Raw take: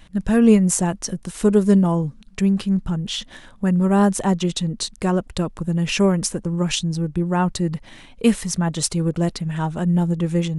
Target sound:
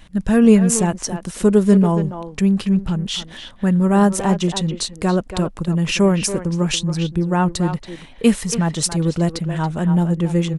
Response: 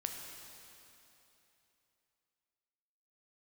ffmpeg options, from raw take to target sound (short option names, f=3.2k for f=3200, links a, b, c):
-filter_complex "[0:a]asplit=2[a][b];[b]adelay=280,highpass=300,lowpass=3.4k,asoftclip=type=hard:threshold=-12.5dB,volume=-8dB[c];[a][c]amix=inputs=2:normalize=0,volume=2dB"